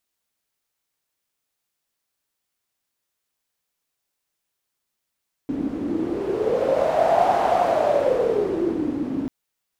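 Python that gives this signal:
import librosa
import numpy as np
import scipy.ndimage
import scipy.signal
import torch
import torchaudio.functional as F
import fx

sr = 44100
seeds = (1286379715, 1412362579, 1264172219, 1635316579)

y = fx.wind(sr, seeds[0], length_s=3.79, low_hz=270.0, high_hz=720.0, q=8.4, gusts=1, swing_db=7.5)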